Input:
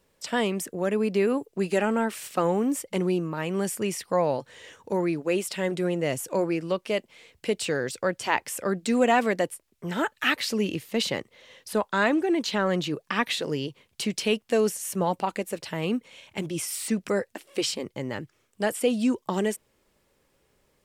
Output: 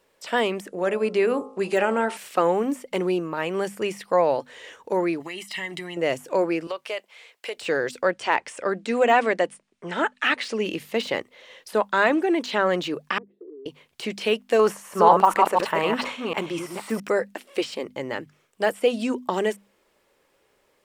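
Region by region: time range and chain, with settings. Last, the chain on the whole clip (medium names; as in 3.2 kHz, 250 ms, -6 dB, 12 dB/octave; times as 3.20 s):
0.68–2.17 s: de-hum 52.96 Hz, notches 26 + careless resampling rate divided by 2×, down none, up filtered
5.20–5.97 s: resonant high shelf 1.5 kHz +6 dB, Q 1.5 + compression, threshold -32 dBFS + comb 1 ms, depth 78%
6.67–7.57 s: high-pass 620 Hz + compression, threshold -29 dBFS
8.11–10.65 s: Chebyshev low-pass 10 kHz, order 8 + treble shelf 8 kHz -6 dB
13.18–13.66 s: Butterworth band-pass 360 Hz, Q 4.5 + compression 2.5:1, threshold -44 dBFS
14.59–17.00 s: chunks repeated in reverse 249 ms, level -4 dB + peaking EQ 1.1 kHz +11.5 dB 1 oct + decay stretcher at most 94 dB/s
whole clip: hum notches 50/100/150/200/250 Hz; de-esser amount 80%; tone controls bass -12 dB, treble -5 dB; trim +5 dB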